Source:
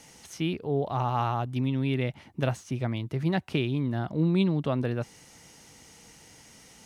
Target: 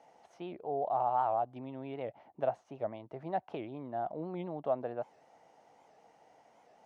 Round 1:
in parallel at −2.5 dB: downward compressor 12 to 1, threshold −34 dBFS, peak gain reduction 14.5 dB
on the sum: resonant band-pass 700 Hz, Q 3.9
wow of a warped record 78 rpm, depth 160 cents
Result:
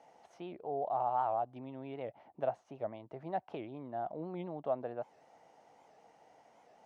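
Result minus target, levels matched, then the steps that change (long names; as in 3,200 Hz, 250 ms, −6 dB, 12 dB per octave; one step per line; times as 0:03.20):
downward compressor: peak gain reduction +9 dB
change: downward compressor 12 to 1, threshold −24 dBFS, peak gain reduction 5.5 dB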